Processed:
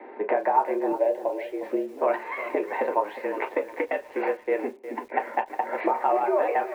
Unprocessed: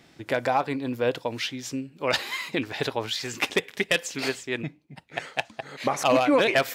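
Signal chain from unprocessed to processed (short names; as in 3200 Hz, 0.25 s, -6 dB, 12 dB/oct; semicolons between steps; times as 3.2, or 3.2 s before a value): compressor 10:1, threshold -36 dBFS, peak gain reduction 19.5 dB; mistuned SSB +89 Hz 250–2200 Hz; 0.92–1.63 fixed phaser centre 520 Hz, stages 4; reverb, pre-delay 3 ms, DRR 3 dB; lo-fi delay 0.36 s, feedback 35%, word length 9-bit, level -12.5 dB; gain +7 dB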